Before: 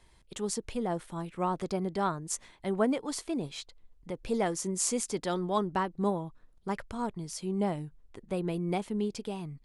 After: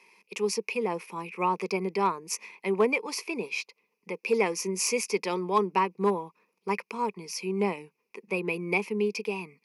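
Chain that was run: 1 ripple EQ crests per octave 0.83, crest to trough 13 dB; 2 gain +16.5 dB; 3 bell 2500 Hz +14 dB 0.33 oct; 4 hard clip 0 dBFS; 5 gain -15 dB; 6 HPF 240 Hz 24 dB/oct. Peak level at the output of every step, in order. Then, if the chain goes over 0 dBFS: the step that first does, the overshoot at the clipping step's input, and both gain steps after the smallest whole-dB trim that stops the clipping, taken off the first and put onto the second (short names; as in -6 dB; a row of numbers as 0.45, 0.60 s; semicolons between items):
-13.5, +3.0, +3.5, 0.0, -15.0, -11.5 dBFS; step 2, 3.5 dB; step 2 +12.5 dB, step 5 -11 dB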